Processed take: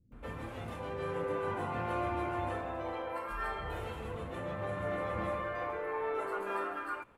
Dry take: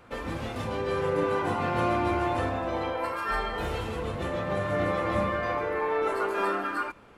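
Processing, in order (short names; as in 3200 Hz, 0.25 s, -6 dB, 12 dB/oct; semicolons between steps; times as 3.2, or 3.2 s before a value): bell 5000 Hz -8.5 dB 1 oct; bands offset in time lows, highs 0.12 s, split 250 Hz; gain -7.5 dB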